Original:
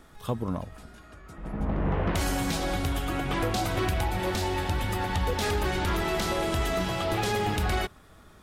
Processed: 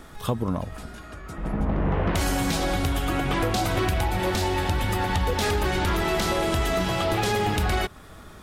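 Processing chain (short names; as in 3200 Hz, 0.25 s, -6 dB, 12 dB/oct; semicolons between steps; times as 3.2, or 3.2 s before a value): compressor 2:1, threshold -33 dBFS, peak gain reduction 6 dB; gain +8.5 dB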